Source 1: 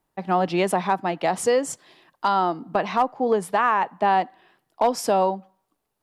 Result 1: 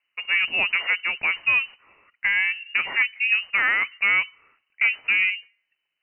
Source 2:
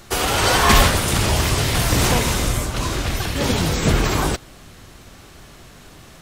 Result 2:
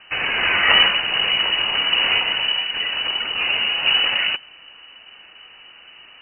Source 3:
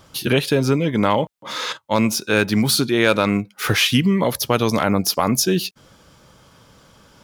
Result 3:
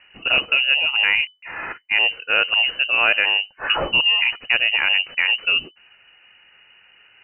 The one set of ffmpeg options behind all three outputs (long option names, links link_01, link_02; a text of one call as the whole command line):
ffmpeg -i in.wav -af "aeval=exprs='0.891*(cos(1*acos(clip(val(0)/0.891,-1,1)))-cos(1*PI/2))+0.0316*(cos(6*acos(clip(val(0)/0.891,-1,1)))-cos(6*PI/2))':channel_layout=same,lowpass=frequency=2600:width_type=q:width=0.5098,lowpass=frequency=2600:width_type=q:width=0.6013,lowpass=frequency=2600:width_type=q:width=0.9,lowpass=frequency=2600:width_type=q:width=2.563,afreqshift=-3000,volume=-1dB" out.wav